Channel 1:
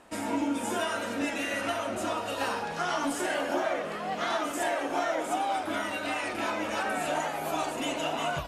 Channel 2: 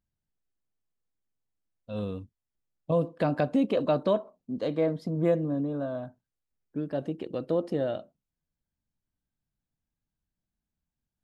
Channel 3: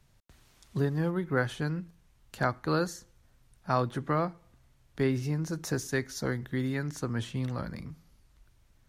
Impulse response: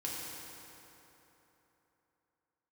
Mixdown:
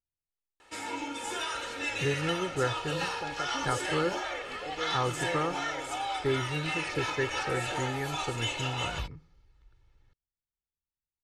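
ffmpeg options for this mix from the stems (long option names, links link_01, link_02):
-filter_complex "[0:a]asubboost=boost=9.5:cutoff=61,crystalizer=i=8.5:c=0,adelay=600,volume=-9.5dB[link_01];[1:a]volume=-15dB[link_02];[2:a]adelay=1250,volume=-3dB[link_03];[link_01][link_02][link_03]amix=inputs=3:normalize=0,lowpass=4000,aecho=1:1:2.3:0.62"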